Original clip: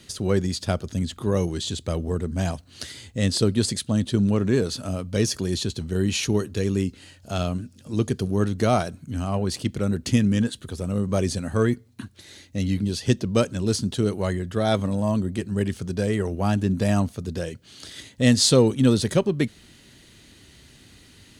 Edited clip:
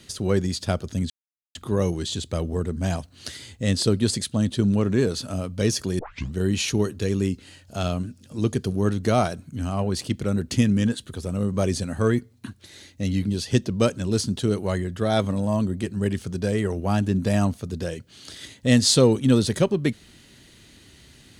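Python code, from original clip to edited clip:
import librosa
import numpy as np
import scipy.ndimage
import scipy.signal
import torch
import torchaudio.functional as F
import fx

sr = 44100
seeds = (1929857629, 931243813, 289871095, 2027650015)

y = fx.edit(x, sr, fx.insert_silence(at_s=1.1, length_s=0.45),
    fx.tape_start(start_s=5.54, length_s=0.34), tone=tone)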